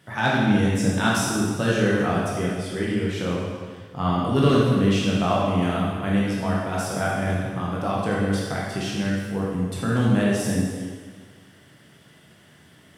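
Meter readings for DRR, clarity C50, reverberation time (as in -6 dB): -5.0 dB, -1.5 dB, 1.6 s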